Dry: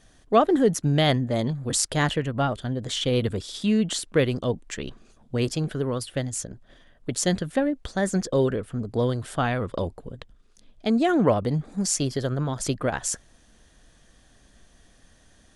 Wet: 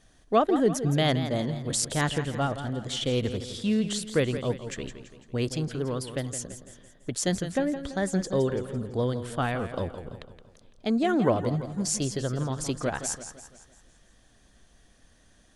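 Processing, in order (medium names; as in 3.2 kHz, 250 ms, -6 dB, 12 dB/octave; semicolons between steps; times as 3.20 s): modulated delay 168 ms, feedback 49%, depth 90 cents, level -11 dB; trim -3.5 dB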